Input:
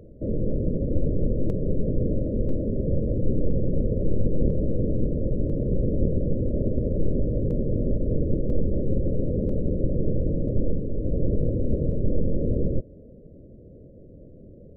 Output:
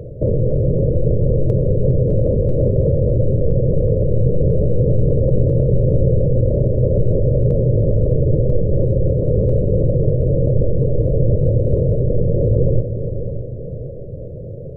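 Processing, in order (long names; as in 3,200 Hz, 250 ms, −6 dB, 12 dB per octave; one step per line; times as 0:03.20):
octave-band graphic EQ 125/250/500 Hz +12/−10/+9 dB
in parallel at +1 dB: compressor whose output falls as the input rises −25 dBFS, ratio −1
on the sum: echo machine with several playback heads 202 ms, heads second and third, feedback 47%, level −11 dB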